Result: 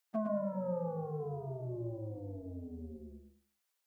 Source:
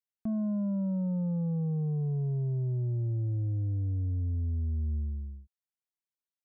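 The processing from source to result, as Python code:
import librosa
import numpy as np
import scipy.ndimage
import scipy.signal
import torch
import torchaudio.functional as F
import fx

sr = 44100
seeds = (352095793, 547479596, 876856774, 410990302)

y = scipy.signal.sosfilt(scipy.signal.butter(2, 590.0, 'highpass', fs=sr, output='sos'), x)
y = fx.stretch_vocoder_free(y, sr, factor=0.6)
y = fx.echo_feedback(y, sr, ms=111, feedback_pct=23, wet_db=-5.0)
y = F.gain(torch.from_numpy(y), 14.5).numpy()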